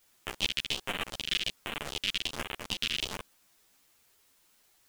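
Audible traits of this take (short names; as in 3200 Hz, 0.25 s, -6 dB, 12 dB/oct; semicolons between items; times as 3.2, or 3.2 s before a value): phasing stages 2, 1.3 Hz, lowest notch 800–4700 Hz; tremolo saw up 6.6 Hz, depth 60%; a quantiser's noise floor 12-bit, dither triangular; a shimmering, thickened sound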